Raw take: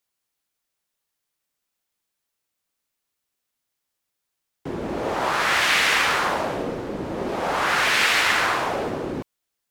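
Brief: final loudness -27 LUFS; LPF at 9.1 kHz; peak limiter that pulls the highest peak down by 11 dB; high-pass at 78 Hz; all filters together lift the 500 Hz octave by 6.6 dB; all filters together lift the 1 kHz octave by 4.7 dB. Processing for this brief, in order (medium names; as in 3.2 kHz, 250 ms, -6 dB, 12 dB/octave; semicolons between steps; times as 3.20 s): high-pass 78 Hz; low-pass 9.1 kHz; peaking EQ 500 Hz +7 dB; peaking EQ 1 kHz +4 dB; trim -2.5 dB; peak limiter -18.5 dBFS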